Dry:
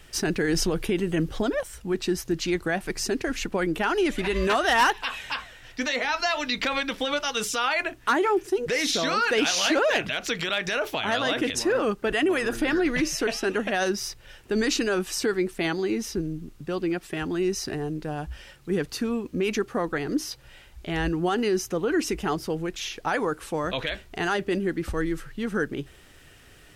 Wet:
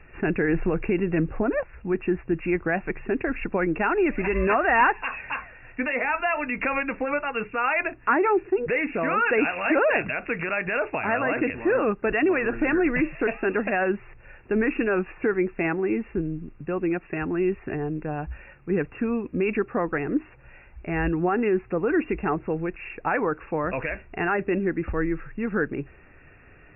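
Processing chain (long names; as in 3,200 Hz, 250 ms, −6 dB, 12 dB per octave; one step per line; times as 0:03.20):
linear-phase brick-wall low-pass 2,800 Hz
level +1.5 dB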